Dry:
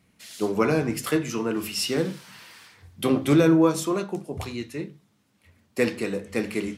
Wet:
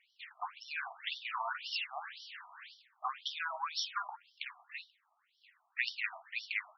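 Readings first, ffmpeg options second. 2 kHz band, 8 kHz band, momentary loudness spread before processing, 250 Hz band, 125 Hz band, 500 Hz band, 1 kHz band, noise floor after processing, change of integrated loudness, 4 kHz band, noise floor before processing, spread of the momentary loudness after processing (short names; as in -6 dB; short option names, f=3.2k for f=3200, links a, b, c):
-4.5 dB, -19.0 dB, 16 LU, under -40 dB, under -40 dB, -31.0 dB, -6.0 dB, -77 dBFS, -14.5 dB, -5.5 dB, -66 dBFS, 13 LU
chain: -af "alimiter=limit=-16dB:level=0:latency=1:release=35,afftfilt=real='re*between(b*sr/1024,890*pow(4200/890,0.5+0.5*sin(2*PI*1.9*pts/sr))/1.41,890*pow(4200/890,0.5+0.5*sin(2*PI*1.9*pts/sr))*1.41)':imag='im*between(b*sr/1024,890*pow(4200/890,0.5+0.5*sin(2*PI*1.9*pts/sr))/1.41,890*pow(4200/890,0.5+0.5*sin(2*PI*1.9*pts/sr))*1.41)':win_size=1024:overlap=0.75,volume=2.5dB"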